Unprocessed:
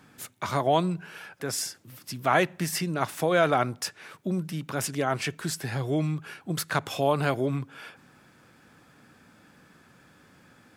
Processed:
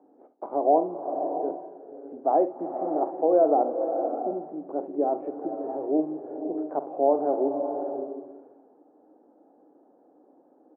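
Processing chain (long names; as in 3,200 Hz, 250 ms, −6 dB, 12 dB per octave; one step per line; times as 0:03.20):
elliptic band-pass filter 290–790 Hz, stop band 80 dB
ambience of single reflections 45 ms −13 dB, 70 ms −15.5 dB
slow-attack reverb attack 610 ms, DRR 6 dB
level +4 dB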